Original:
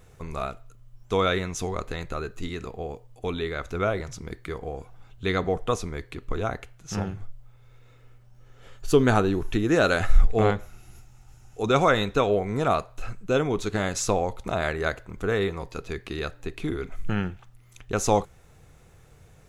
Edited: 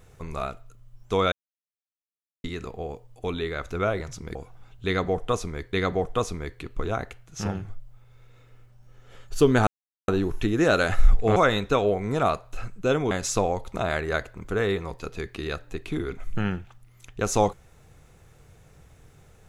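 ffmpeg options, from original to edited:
-filter_complex "[0:a]asplit=8[s0][s1][s2][s3][s4][s5][s6][s7];[s0]atrim=end=1.32,asetpts=PTS-STARTPTS,afade=t=out:st=1.316:d=0.004:c=hsin[s8];[s1]atrim=start=1.32:end=2.44,asetpts=PTS-STARTPTS,volume=0[s9];[s2]atrim=start=2.44:end=4.352,asetpts=PTS-STARTPTS,afade=t=in:d=0.004:c=hsin[s10];[s3]atrim=start=4.738:end=6.122[s11];[s4]atrim=start=5.248:end=9.19,asetpts=PTS-STARTPTS,afade=t=out:st=3.938:d=0.004:c=hsin,apad=pad_dur=0.41[s12];[s5]atrim=start=9.19:end=10.472,asetpts=PTS-STARTPTS,afade=t=in:d=0.004:c=hsin[s13];[s6]atrim=start=11.808:end=13.562[s14];[s7]atrim=start=13.828[s15];[s8][s9][s10]concat=n=3:v=0:a=1[s16];[s16][s11]acrossfade=d=0.004:c1=hsin:c2=hsin[s17];[s12][s13]concat=n=2:v=0:a=1[s18];[s17][s18]acrossfade=d=0.004:c1=hsin:c2=hsin[s19];[s19][s14]acrossfade=d=0.004:c1=hsin:c2=hsin[s20];[s20][s15]acrossfade=d=0.004:c1=hsin:c2=hsin"

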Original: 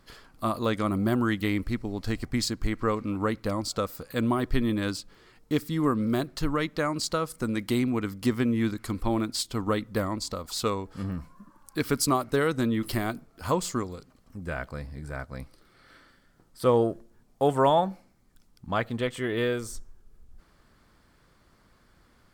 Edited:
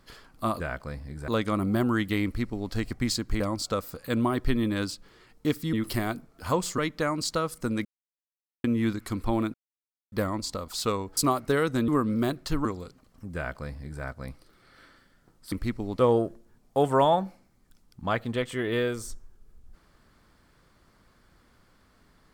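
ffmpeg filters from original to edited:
-filter_complex "[0:a]asplit=15[s0][s1][s2][s3][s4][s5][s6][s7][s8][s9][s10][s11][s12][s13][s14];[s0]atrim=end=0.602[s15];[s1]atrim=start=14.468:end=15.152[s16];[s2]atrim=start=0.598:end=2.722[s17];[s3]atrim=start=3.458:end=5.792[s18];[s4]atrim=start=12.718:end=13.772[s19];[s5]atrim=start=6.558:end=7.63,asetpts=PTS-STARTPTS,afade=t=out:st=1.068:d=0.004:c=hsin[s20];[s6]atrim=start=7.63:end=8.42,asetpts=PTS-STARTPTS,volume=0[s21];[s7]atrim=start=8.42:end=9.32,asetpts=PTS-STARTPTS,afade=t=in:d=0.004:c=hsin,afade=t=out:st=0.896:d=0.004:c=hsin[s22];[s8]atrim=start=9.32:end=9.9,asetpts=PTS-STARTPTS,volume=0[s23];[s9]atrim=start=9.9:end=10.952,asetpts=PTS-STARTPTS,afade=t=in:d=0.004:c=hsin[s24];[s10]atrim=start=12.008:end=12.722[s25];[s11]atrim=start=5.788:end=6.562[s26];[s12]atrim=start=13.768:end=16.642[s27];[s13]atrim=start=1.568:end=2.042[s28];[s14]atrim=start=16.638[s29];[s15][s16]acrossfade=d=0.004:c1=hsin:c2=hsin[s30];[s30][s17]acrossfade=d=0.004:c1=hsin:c2=hsin[s31];[s31][s18]acrossfade=d=0.004:c1=hsin:c2=hsin[s32];[s32][s19]acrossfade=d=0.004:c1=hsin:c2=hsin[s33];[s20][s21][s22][s23][s24]concat=n=5:v=0:a=1[s34];[s33][s34]acrossfade=d=0.004:c1=hsin:c2=hsin[s35];[s35][s25]acrossfade=d=0.004:c1=hsin:c2=hsin[s36];[s36][s26]acrossfade=d=0.004:c1=hsin:c2=hsin[s37];[s37][s27]acrossfade=d=0.004:c1=hsin:c2=hsin[s38];[s38][s28]acrossfade=d=0.004:c1=hsin:c2=hsin[s39];[s39][s29]acrossfade=d=0.004:c1=hsin:c2=hsin"

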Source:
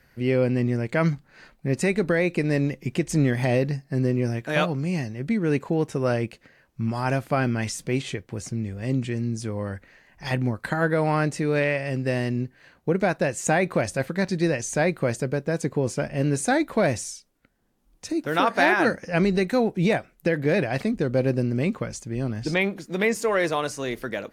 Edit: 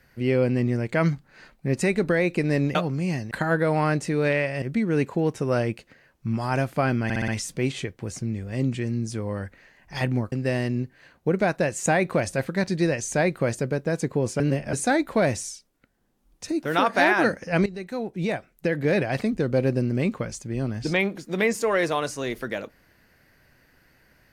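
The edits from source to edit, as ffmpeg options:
-filter_complex "[0:a]asplit=12[s0][s1][s2][s3][s4][s5][s6][s7][s8][s9][s10][s11];[s0]atrim=end=2.752[s12];[s1]atrim=start=4.598:end=5.162[s13];[s2]atrim=start=10.618:end=11.932[s14];[s3]atrim=start=5.158:end=7.642[s15];[s4]atrim=start=7.578:end=7.642[s16];[s5]atrim=start=7.578:end=7.642[s17];[s6]atrim=start=7.578:end=7.642[s18];[s7]atrim=start=7.578:end=10.622[s19];[s8]atrim=start=11.928:end=16.012[s20];[s9]atrim=start=16.008:end=16.342,asetpts=PTS-STARTPTS,areverse[s21];[s10]atrim=start=16.338:end=19.27,asetpts=PTS-STARTPTS,afade=t=out:st=2.928:d=0.004:c=hsin:silence=0.158489[s22];[s11]atrim=start=19.27,asetpts=PTS-STARTPTS,afade=t=in:d=1.29:silence=0.158489[s23];[s12][s13]acrossfade=d=0.004:c1=hsin:c2=hsin[s24];[s24][s14]acrossfade=d=0.004:c1=hsin:c2=hsin[s25];[s25][s15]acrossfade=d=0.004:c1=hsin:c2=hsin[s26];[s26][s16]acrossfade=d=0.004:c1=hsin:c2=hsin[s27];[s27][s17]acrossfade=d=0.004:c1=hsin:c2=hsin[s28];[s28][s18]acrossfade=d=0.004:c1=hsin:c2=hsin[s29];[s29][s19]acrossfade=d=0.004:c1=hsin:c2=hsin[s30];[s30][s20]acrossfade=d=0.004:c1=hsin:c2=hsin[s31];[s31][s21]acrossfade=d=0.004:c1=hsin:c2=hsin[s32];[s22][s23]concat=n=2:v=0:a=1[s33];[s32][s33]acrossfade=d=0.004:c1=hsin:c2=hsin"

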